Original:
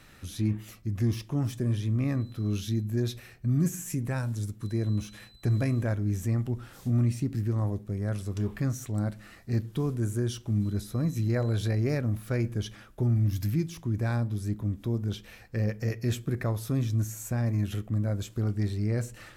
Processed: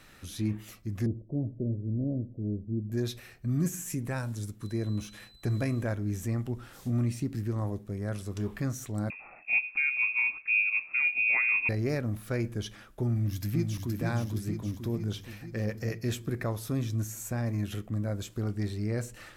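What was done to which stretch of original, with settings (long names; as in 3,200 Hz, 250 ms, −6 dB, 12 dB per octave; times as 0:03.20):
0:01.06–0:02.92: elliptic low-pass filter 620 Hz, stop band 60 dB
0:09.10–0:11.69: voice inversion scrambler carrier 2,600 Hz
0:13.07–0:13.91: delay throw 470 ms, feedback 65%, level −4.5 dB
whole clip: parametric band 97 Hz −4.5 dB 2.2 octaves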